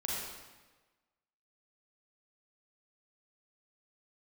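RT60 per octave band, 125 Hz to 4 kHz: 1.3, 1.3, 1.3, 1.3, 1.2, 1.1 s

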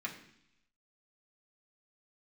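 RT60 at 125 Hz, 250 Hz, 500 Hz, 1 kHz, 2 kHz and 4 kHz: 0.90, 0.90, 0.70, 0.75, 0.90, 1.0 s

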